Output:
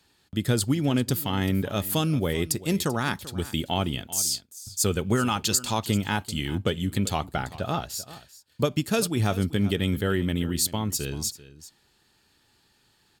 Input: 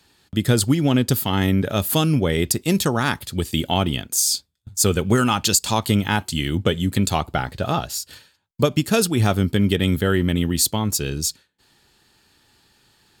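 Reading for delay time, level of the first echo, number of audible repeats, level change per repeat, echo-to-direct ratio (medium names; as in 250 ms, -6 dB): 389 ms, -17.0 dB, 1, no regular repeats, -17.0 dB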